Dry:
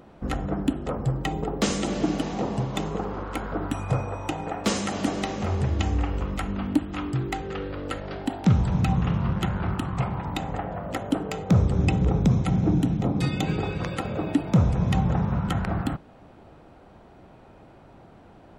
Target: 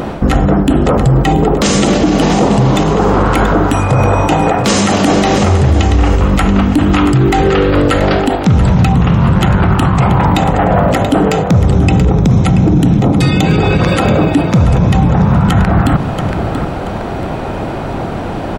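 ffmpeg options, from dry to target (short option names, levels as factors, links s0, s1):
-af "areverse,acompressor=threshold=0.0224:ratio=6,areverse,aecho=1:1:681|1362|2043:0.2|0.0658|0.0217,alimiter=level_in=37.6:limit=0.891:release=50:level=0:latency=1,volume=0.891"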